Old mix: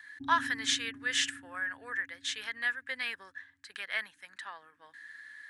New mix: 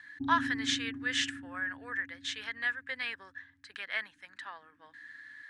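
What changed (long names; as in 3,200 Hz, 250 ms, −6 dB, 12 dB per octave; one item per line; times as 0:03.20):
background +7.5 dB
master: add high-frequency loss of the air 64 metres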